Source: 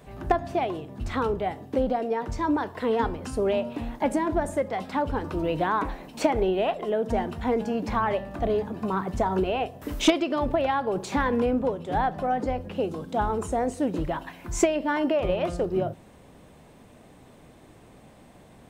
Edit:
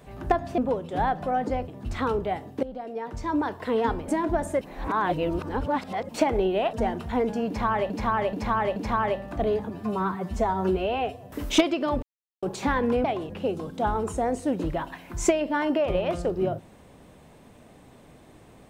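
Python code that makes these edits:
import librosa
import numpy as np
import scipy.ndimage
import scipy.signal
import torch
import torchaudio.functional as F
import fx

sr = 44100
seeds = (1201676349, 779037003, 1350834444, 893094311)

y = fx.edit(x, sr, fx.swap(start_s=0.58, length_s=0.25, other_s=11.54, other_length_s=1.1),
    fx.fade_in_from(start_s=1.78, length_s=0.86, floor_db=-16.0),
    fx.cut(start_s=3.23, length_s=0.88),
    fx.reverse_span(start_s=4.64, length_s=1.48),
    fx.cut(start_s=6.76, length_s=0.29),
    fx.repeat(start_s=7.79, length_s=0.43, count=4),
    fx.stretch_span(start_s=8.73, length_s=1.07, factor=1.5),
    fx.silence(start_s=10.52, length_s=0.4), tone=tone)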